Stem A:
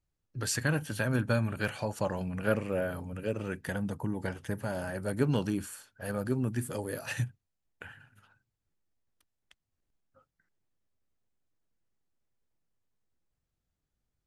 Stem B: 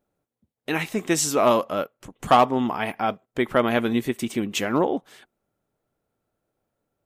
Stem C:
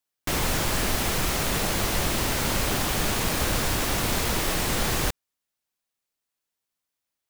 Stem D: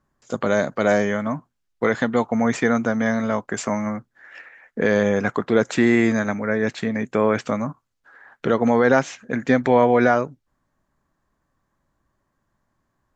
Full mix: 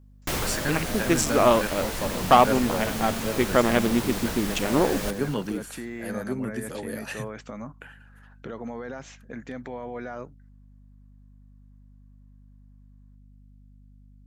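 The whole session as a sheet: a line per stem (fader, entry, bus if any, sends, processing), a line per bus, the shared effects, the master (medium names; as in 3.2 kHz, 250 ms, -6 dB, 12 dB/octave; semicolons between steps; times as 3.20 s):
+1.0 dB, 0.00 s, no send, no echo send, high-pass 150 Hz 24 dB/octave; hum 50 Hz, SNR 16 dB
+0.5 dB, 0.00 s, no send, no echo send, local Wiener filter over 41 samples
-0.5 dB, 0.00 s, no send, echo send -17.5 dB, auto duck -7 dB, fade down 0.45 s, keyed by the second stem
-11.5 dB, 0.00 s, no send, no echo send, peak limiter -15.5 dBFS, peak gain reduction 11.5 dB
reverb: none
echo: feedback delay 235 ms, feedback 41%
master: none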